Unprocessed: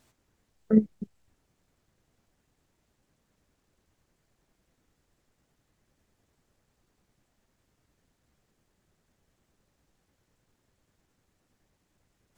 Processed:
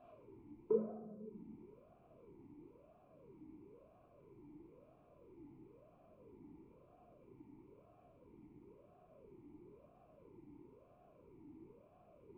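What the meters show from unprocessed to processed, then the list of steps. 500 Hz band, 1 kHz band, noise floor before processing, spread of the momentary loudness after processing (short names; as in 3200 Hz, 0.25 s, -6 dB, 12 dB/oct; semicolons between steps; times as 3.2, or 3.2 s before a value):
-4.0 dB, 0.0 dB, -76 dBFS, 13 LU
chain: tilt -3.5 dB/oct; compressor 16:1, threshold -42 dBFS, peak gain reduction 35.5 dB; air absorption 280 m; shoebox room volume 830 m³, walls mixed, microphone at 3 m; vowel sweep a-u 1 Hz; gain +13.5 dB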